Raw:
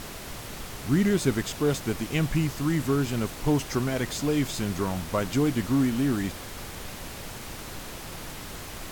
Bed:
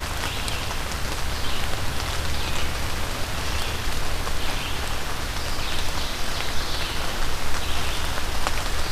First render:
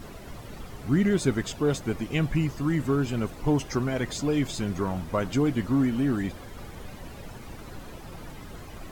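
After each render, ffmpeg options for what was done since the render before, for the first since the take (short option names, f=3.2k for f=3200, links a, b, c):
-af "afftdn=nr=12:nf=-40"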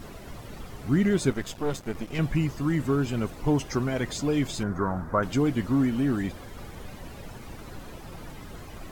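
-filter_complex "[0:a]asettb=1/sr,asplit=3[a][b][c];[a]atrim=end=1.304[d];[b]atrim=start=1.3:end=2.19,asetpts=PTS-STARTPTS,afade=t=in:d=0.004:c=qsin,afade=t=out:st=0.886:d=0.004:c=qsin,aeval=exprs='if(lt(val(0),0),0.251*val(0),val(0))':c=same[e];[c]atrim=start=2.186[f];[d][e]acrossfade=d=0.004:c1=hsin:c2=qsin[g];[g][f]acrossfade=d=0.004:c1=qsin:c2=hsin,asettb=1/sr,asplit=3[h][i][j];[h]atrim=end=4.634[k];[i]atrim=start=4.63:end=5.23,asetpts=PTS-STARTPTS,afade=t=in:d=0.004:c=qsin,afade=t=out:st=0.596:d=0.004:c=qsin,highshelf=f=2k:t=q:w=3:g=-10.5[l];[j]atrim=start=5.226[m];[k][l]acrossfade=d=0.004:c1=hsin:c2=qsin[n];[n][m]acrossfade=d=0.004:c1=qsin:c2=hsin"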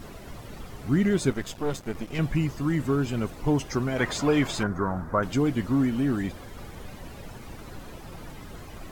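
-filter_complex "[0:a]asettb=1/sr,asplit=3[a][b][c];[a]atrim=end=3.984[d];[b]atrim=start=3.98:end=4.67,asetpts=PTS-STARTPTS,afade=t=in:d=0.004:c=qsin,afade=t=out:st=0.686:d=0.004:c=qsin,equalizer=f=1.2k:t=o:w=2.5:g=10[e];[c]atrim=start=4.666[f];[d][e]acrossfade=d=0.004:c1=hsin:c2=qsin[g];[g][f]acrossfade=d=0.004:c1=qsin:c2=hsin"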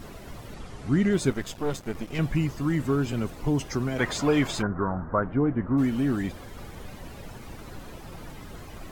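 -filter_complex "[0:a]asettb=1/sr,asplit=3[a][b][c];[a]atrim=end=0.544[d];[b]atrim=start=0.54:end=1.13,asetpts=PTS-STARTPTS,afade=t=in:d=0.004:c=qsin,afade=t=out:st=0.586:d=0.004:c=qsin,lowpass=f=10k:w=0.5412,lowpass=f=10k:w=1.3066[e];[c]atrim=start=1.126[f];[d][e]acrossfade=d=0.004:c1=hsin:c2=qsin[g];[g][f]acrossfade=d=0.004:c1=qsin:c2=hsin,asettb=1/sr,asplit=3[h][i][j];[h]atrim=end=3.124[k];[i]atrim=start=3.12:end=3.99,asetpts=PTS-STARTPTS,afade=t=in:d=0.004:c=qsin,afade=t=out:st=0.866:d=0.004:c=qsin,acrossover=split=370|3000[l][m][n];[m]acompressor=threshold=-31dB:ratio=6:attack=3.2:release=140:knee=2.83:detection=peak[o];[l][o][n]amix=inputs=3:normalize=0[p];[j]atrim=start=3.986[q];[k][p]acrossfade=d=0.004:c1=hsin:c2=qsin[r];[r][q]acrossfade=d=0.004:c1=qsin:c2=hsin,asplit=3[s][t][u];[s]afade=t=out:st=4.61:d=0.02[v];[t]lowpass=f=1.7k:w=0.5412,lowpass=f=1.7k:w=1.3066,afade=t=in:st=4.61:d=0.02,afade=t=out:st=5.77:d=0.02[w];[u]afade=t=in:st=5.77:d=0.02[x];[v][w][x]amix=inputs=3:normalize=0"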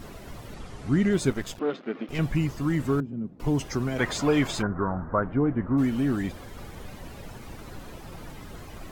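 -filter_complex "[0:a]asettb=1/sr,asplit=3[a][b][c];[a]atrim=end=1.594[d];[b]atrim=start=1.59:end=2.09,asetpts=PTS-STARTPTS,afade=t=in:d=0.004:c=qsin,afade=t=out:st=0.496:d=0.004:c=qsin,highpass=f=210:w=0.5412,highpass=f=210:w=1.3066,equalizer=f=250:t=q:w=4:g=5,equalizer=f=400:t=q:w=4:g=3,equalizer=f=920:t=q:w=4:g=-6,equalizer=f=1.3k:t=q:w=4:g=3,lowpass=f=3.6k:w=0.5412,lowpass=f=3.6k:w=1.3066[e];[c]atrim=start=2.086[f];[d][e]acrossfade=d=0.004:c1=hsin:c2=qsin[g];[g][f]acrossfade=d=0.004:c1=qsin:c2=hsin,asettb=1/sr,asplit=3[h][i][j];[h]atrim=end=3.004[k];[i]atrim=start=3:end=3.4,asetpts=PTS-STARTPTS,afade=t=in:d=0.004:c=qsin,afade=t=out:st=0.396:d=0.004:c=qsin,bandpass=f=200:t=q:w=2.2[l];[j]atrim=start=3.396[m];[k][l]acrossfade=d=0.004:c1=hsin:c2=qsin[n];[n][m]acrossfade=d=0.004:c1=qsin:c2=hsin"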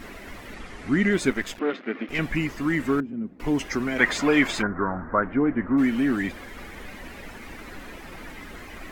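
-af "equalizer=f=125:t=o:w=1:g=-10,equalizer=f=250:t=o:w=1:g=5,equalizer=f=2k:t=o:w=1:g=11"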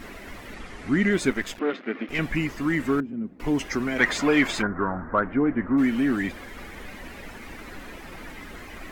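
-af "asoftclip=type=tanh:threshold=-6dB"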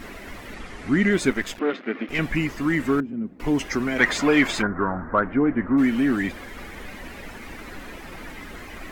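-af "volume=2dB"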